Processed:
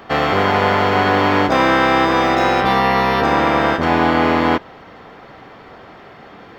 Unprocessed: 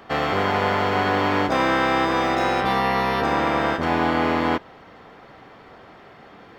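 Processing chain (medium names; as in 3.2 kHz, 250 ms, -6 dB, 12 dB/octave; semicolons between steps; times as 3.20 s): peaking EQ 9.5 kHz -6.5 dB 0.51 oct; trim +6 dB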